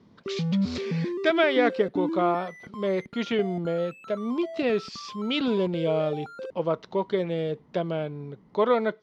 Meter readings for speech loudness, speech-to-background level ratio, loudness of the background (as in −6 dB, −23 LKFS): −27.5 LKFS, 6.5 dB, −34.0 LKFS